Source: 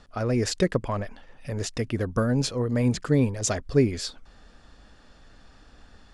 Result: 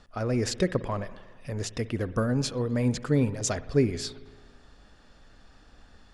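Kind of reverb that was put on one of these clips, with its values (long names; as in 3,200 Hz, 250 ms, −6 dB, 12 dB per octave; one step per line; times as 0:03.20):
spring reverb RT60 1.5 s, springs 55 ms, chirp 80 ms, DRR 15 dB
level −2.5 dB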